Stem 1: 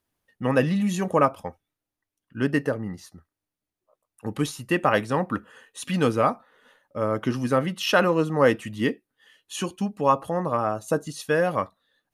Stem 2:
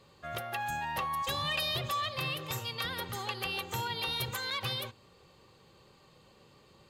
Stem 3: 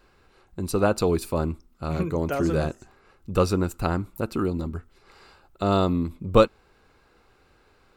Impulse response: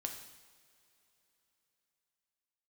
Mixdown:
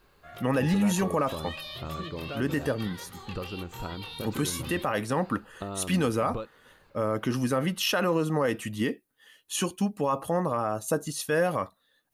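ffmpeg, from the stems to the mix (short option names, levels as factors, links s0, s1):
-filter_complex "[0:a]highshelf=f=9400:g=11.5,volume=1[s0];[1:a]flanger=delay=20:depth=5.7:speed=2.5,volume=0.596[s1];[2:a]acompressor=threshold=0.0316:ratio=6,lowpass=4700,volume=0.668[s2];[s0][s1][s2]amix=inputs=3:normalize=0,alimiter=limit=0.15:level=0:latency=1:release=53"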